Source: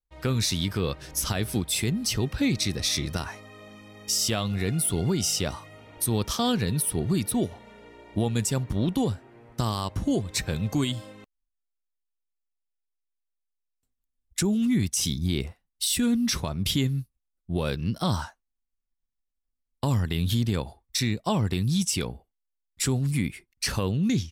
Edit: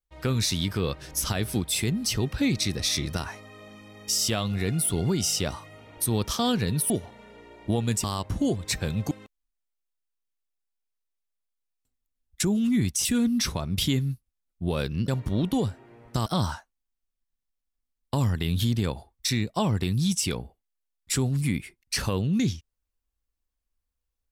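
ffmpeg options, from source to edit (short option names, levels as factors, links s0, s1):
-filter_complex "[0:a]asplit=7[s0][s1][s2][s3][s4][s5][s6];[s0]atrim=end=6.902[s7];[s1]atrim=start=7.378:end=8.522[s8];[s2]atrim=start=9.698:end=10.772[s9];[s3]atrim=start=11.088:end=15.032[s10];[s4]atrim=start=15.928:end=17.962[s11];[s5]atrim=start=8.518:end=9.702[s12];[s6]atrim=start=17.958[s13];[s7][s8]acrossfade=d=0.004:c1=hsin:c2=hsin[s14];[s14][s9]acrossfade=d=0.004:c1=hsin:c2=hsin[s15];[s15][s10]acrossfade=d=0.004:c1=hsin:c2=hsin[s16];[s16][s11]acrossfade=d=0.004:c1=hsin:c2=hsin[s17];[s17][s12]acrossfade=d=0.004:c1=hsin:c2=hsin[s18];[s18][s13]acrossfade=d=0.004:c1=hsin:c2=hsin"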